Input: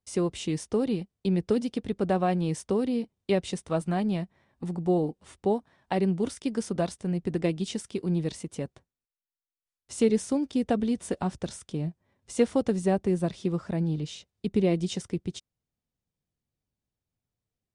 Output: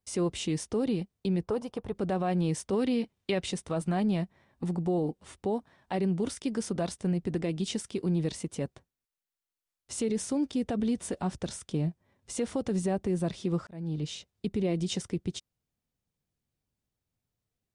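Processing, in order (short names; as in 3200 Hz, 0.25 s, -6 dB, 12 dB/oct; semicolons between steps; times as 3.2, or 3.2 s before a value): 1.43–1.95 graphic EQ 250/1000/2000/4000/8000 Hz -11/+10/-7/-9/-7 dB; limiter -23 dBFS, peak gain reduction 11 dB; 2.73–3.46 bell 2300 Hz +6.5 dB 2.4 oct; 13.67–14.12 fade in; gain +1.5 dB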